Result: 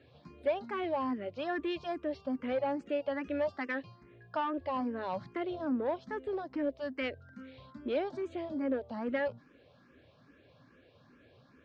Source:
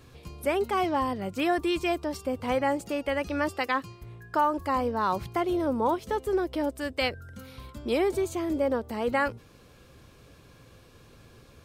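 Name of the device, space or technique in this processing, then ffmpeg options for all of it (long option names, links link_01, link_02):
barber-pole phaser into a guitar amplifier: -filter_complex "[0:a]asplit=2[link_01][link_02];[link_02]afreqshift=2.4[link_03];[link_01][link_03]amix=inputs=2:normalize=1,asoftclip=type=tanh:threshold=-23dB,highpass=100,equalizer=frequency=260:width_type=q:width=4:gain=8,equalizer=frequency=600:width_type=q:width=4:gain=8,equalizer=frequency=1700:width_type=q:width=4:gain=5,lowpass=frequency=4400:width=0.5412,lowpass=frequency=4400:width=1.3066,volume=-6dB"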